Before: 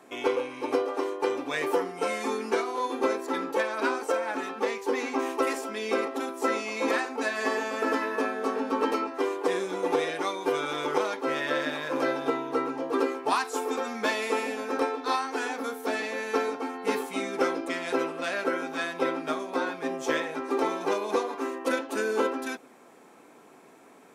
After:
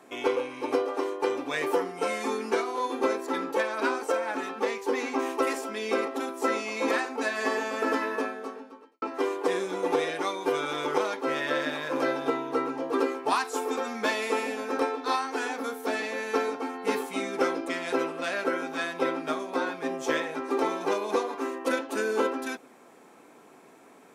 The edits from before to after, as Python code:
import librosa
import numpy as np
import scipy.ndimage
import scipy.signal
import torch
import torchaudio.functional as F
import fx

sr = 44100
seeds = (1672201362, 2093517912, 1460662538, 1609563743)

y = fx.edit(x, sr, fx.fade_out_span(start_s=8.12, length_s=0.9, curve='qua'), tone=tone)